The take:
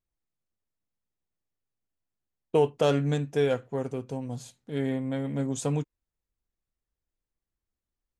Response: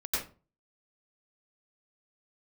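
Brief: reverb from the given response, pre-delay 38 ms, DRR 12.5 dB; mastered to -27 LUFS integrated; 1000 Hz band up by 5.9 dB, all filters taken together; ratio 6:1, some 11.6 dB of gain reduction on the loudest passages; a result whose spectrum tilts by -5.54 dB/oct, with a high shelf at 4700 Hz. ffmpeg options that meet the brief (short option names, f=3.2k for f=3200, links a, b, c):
-filter_complex "[0:a]equalizer=f=1k:t=o:g=7.5,highshelf=f=4.7k:g=8,acompressor=threshold=-28dB:ratio=6,asplit=2[a][b];[1:a]atrim=start_sample=2205,adelay=38[c];[b][c]afir=irnorm=-1:irlink=0,volume=-18.5dB[d];[a][d]amix=inputs=2:normalize=0,volume=6.5dB"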